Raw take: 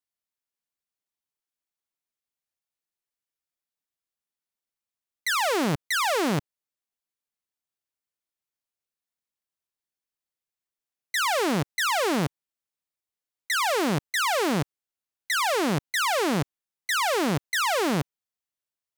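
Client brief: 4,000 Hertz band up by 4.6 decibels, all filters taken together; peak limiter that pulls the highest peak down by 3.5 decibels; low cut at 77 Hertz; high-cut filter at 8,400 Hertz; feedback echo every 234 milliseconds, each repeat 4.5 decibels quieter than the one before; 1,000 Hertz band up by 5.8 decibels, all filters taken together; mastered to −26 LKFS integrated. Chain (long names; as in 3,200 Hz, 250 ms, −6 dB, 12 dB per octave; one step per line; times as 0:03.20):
high-pass filter 77 Hz
low-pass filter 8,400 Hz
parametric band 1,000 Hz +7 dB
parametric band 4,000 Hz +5.5 dB
brickwall limiter −13.5 dBFS
repeating echo 234 ms, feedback 60%, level −4.5 dB
level −4 dB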